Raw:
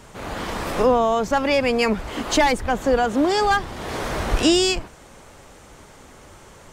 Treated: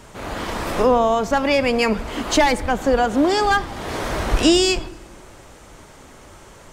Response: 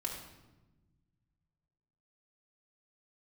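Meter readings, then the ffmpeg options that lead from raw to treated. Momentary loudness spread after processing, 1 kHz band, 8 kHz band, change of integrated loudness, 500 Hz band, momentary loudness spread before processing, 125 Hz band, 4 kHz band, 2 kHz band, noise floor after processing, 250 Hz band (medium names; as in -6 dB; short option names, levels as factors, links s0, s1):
11 LU, +1.5 dB, +1.5 dB, +1.5 dB, +1.5 dB, 11 LU, +1.5 dB, +1.5 dB, +1.5 dB, -45 dBFS, +2.0 dB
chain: -filter_complex "[0:a]asplit=2[s0][s1];[1:a]atrim=start_sample=2205[s2];[s1][s2]afir=irnorm=-1:irlink=0,volume=0.237[s3];[s0][s3]amix=inputs=2:normalize=0"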